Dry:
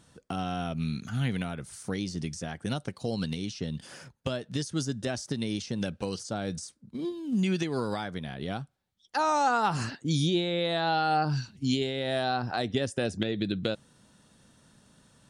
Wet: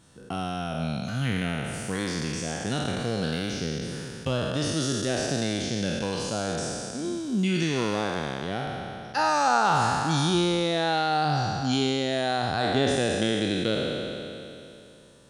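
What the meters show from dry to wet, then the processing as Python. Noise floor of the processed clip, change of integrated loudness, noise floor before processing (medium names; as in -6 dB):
-46 dBFS, +4.0 dB, -66 dBFS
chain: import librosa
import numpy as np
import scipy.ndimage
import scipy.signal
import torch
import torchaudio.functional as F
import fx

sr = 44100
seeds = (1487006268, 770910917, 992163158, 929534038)

y = fx.spec_trails(x, sr, decay_s=2.83)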